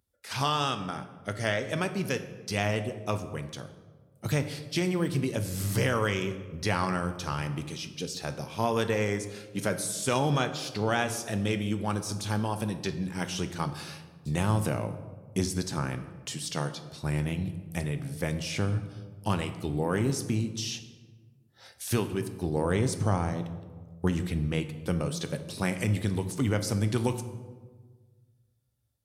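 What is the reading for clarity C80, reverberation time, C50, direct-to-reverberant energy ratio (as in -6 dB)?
13.0 dB, 1.5 s, 11.5 dB, 9.0 dB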